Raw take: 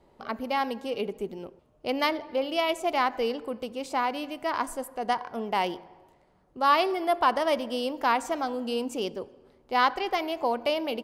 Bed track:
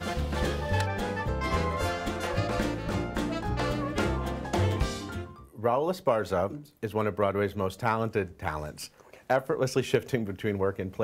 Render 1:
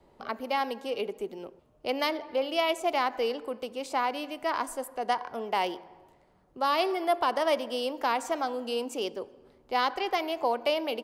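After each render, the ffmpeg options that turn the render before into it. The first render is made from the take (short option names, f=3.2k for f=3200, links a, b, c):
-filter_complex "[0:a]acrossover=split=270|680|2800[a][b][c][d];[a]acompressor=threshold=-53dB:ratio=6[e];[c]alimiter=limit=-22dB:level=0:latency=1:release=156[f];[e][b][f][d]amix=inputs=4:normalize=0"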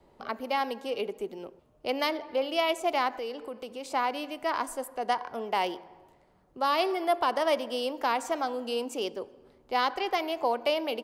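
-filter_complex "[0:a]asettb=1/sr,asplit=3[a][b][c];[a]atrim=end=3.144[d];[b]atrim=start=3.14:end=3.94,asetpts=PTS-STARTPTS,afade=t=in:d=0.004:c=qsin,afade=t=out:st=0.796:d=0.004:c=qsin,acompressor=threshold=-37dB:ratio=2:attack=3.2:release=140:knee=1:detection=peak[e];[c]atrim=start=3.936[f];[d][e]acrossfade=d=0.004:c1=hsin:c2=qsin[g];[g][f]acrossfade=d=0.004:c1=qsin:c2=hsin"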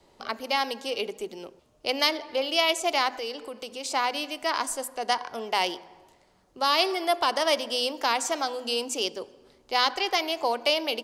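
-af "equalizer=f=5.9k:w=0.49:g=13,bandreject=f=50:t=h:w=6,bandreject=f=100:t=h:w=6,bandreject=f=150:t=h:w=6,bandreject=f=200:t=h:w=6,bandreject=f=250:t=h:w=6"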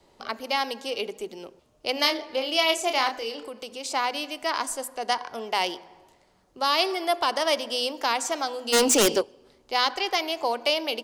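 -filter_complex "[0:a]asettb=1/sr,asplit=3[a][b][c];[a]atrim=end=1.934[d];[b]atrim=start=1.93:end=3.5,asetpts=PTS-STARTPTS,afade=t=in:d=0.004:c=qsin,afade=t=out:st=1.566:d=0.004:c=qsin,asplit=2[e][f];[f]adelay=31,volume=-6.5dB[g];[e][g]amix=inputs=2:normalize=0,atrim=end_sample=69237[h];[c]atrim=start=3.496[i];[d][h]acrossfade=d=0.004:c1=hsin:c2=qsin[j];[j][i]acrossfade=d=0.004:c1=qsin:c2=hsin,asplit=3[k][l][m];[k]afade=t=out:st=8.72:d=0.02[n];[l]aeval=exprs='0.178*sin(PI/2*3.55*val(0)/0.178)':c=same,afade=t=in:st=8.72:d=0.02,afade=t=out:st=9.2:d=0.02[o];[m]afade=t=in:st=9.2:d=0.02[p];[n][o][p]amix=inputs=3:normalize=0"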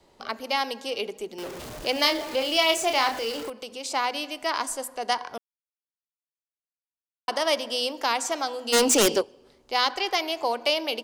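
-filter_complex "[0:a]asettb=1/sr,asplit=3[a][b][c];[a]atrim=end=1.384[d];[b]atrim=start=1.38:end=3.5,asetpts=PTS-STARTPTS,afade=t=in:d=0.004:c=qsin,afade=t=out:st=2.116:d=0.004:c=qsin,aeval=exprs='val(0)+0.5*0.0224*sgn(val(0))':c=same[e];[c]atrim=start=3.496[f];[d][e]acrossfade=d=0.004:c1=hsin:c2=qsin[g];[g][f]acrossfade=d=0.004:c1=qsin:c2=hsin,asplit=3[h][i][j];[h]atrim=end=5.38,asetpts=PTS-STARTPTS,afade=t=out:st=5.376:d=0.004:c=hsin[k];[i]atrim=start=5.38:end=7.28,asetpts=PTS-STARTPTS,volume=0[l];[j]atrim=start=7.28,asetpts=PTS-STARTPTS,afade=t=in:d=0.004:c=hsin[m];[k][l][m]concat=n=3:v=0:a=1"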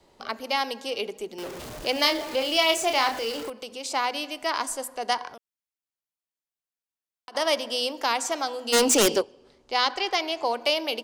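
-filter_complex "[0:a]asettb=1/sr,asplit=3[a][b][c];[a]atrim=end=5.304[d];[b]atrim=start=5.3:end=7.35,asetpts=PTS-STARTPTS,afade=t=in:d=0.004:c=qsin,afade=t=out:st=2.046:d=0.004:c=qsin,acompressor=threshold=-41dB:ratio=6:attack=3.2:release=140:knee=1:detection=peak[e];[c]atrim=start=7.346[f];[d][e]acrossfade=d=0.004:c1=hsin:c2=qsin[g];[g][f]acrossfade=d=0.004:c1=qsin:c2=hsin,asettb=1/sr,asplit=3[h][i][j];[h]atrim=end=9.224[k];[i]atrim=start=9.22:end=10.54,asetpts=PTS-STARTPTS,afade=t=in:d=0.004:c=qsin,afade=t=out:st=1.316:d=0.004:c=qsin,lowpass=8.6k[l];[j]atrim=start=10.536[m];[k][l]acrossfade=d=0.004:c1=hsin:c2=qsin[n];[n][m]acrossfade=d=0.004:c1=qsin:c2=hsin"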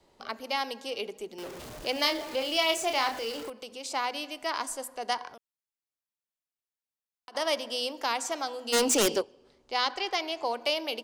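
-af "volume=-4.5dB"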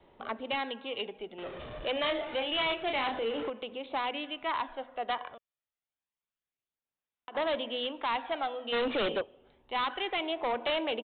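-af "aphaser=in_gain=1:out_gain=1:delay=1.7:decay=0.37:speed=0.28:type=sinusoidal,aresample=8000,asoftclip=type=hard:threshold=-27dB,aresample=44100"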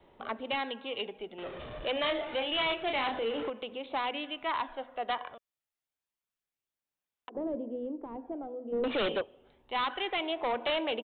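-filter_complex "[0:a]asettb=1/sr,asplit=3[a][b][c];[a]atrim=end=7.294[d];[b]atrim=start=7.29:end=8.84,asetpts=PTS-STARTPTS,afade=t=in:d=0.004:c=qsin,afade=t=out:st=1.546:d=0.004:c=qsin,lowpass=f=360:t=q:w=2[e];[c]atrim=start=8.836[f];[d][e]acrossfade=d=0.004:c1=hsin:c2=qsin[g];[g][f]acrossfade=d=0.004:c1=qsin:c2=hsin"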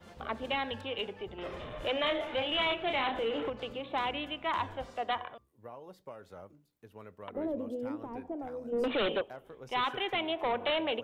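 -filter_complex "[1:a]volume=-21.5dB[a];[0:a][a]amix=inputs=2:normalize=0"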